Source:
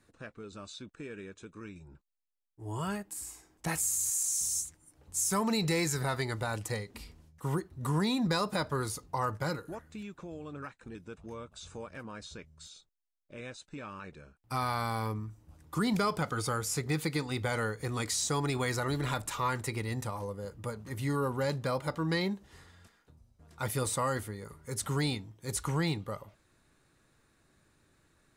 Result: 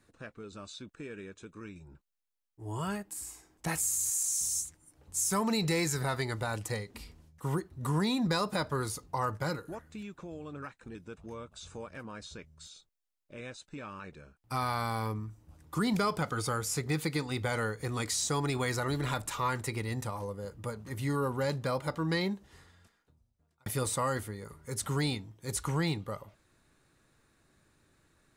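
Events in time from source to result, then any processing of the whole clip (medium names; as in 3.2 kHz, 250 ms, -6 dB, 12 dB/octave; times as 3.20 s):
22.31–23.66 s: fade out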